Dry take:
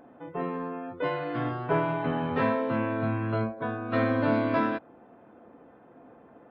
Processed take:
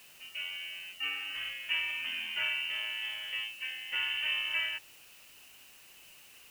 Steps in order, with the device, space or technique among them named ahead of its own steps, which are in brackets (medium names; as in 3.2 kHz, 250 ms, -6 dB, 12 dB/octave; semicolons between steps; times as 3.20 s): scrambled radio voice (band-pass 320–2700 Hz; frequency inversion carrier 3.3 kHz; white noise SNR 20 dB); trim -5.5 dB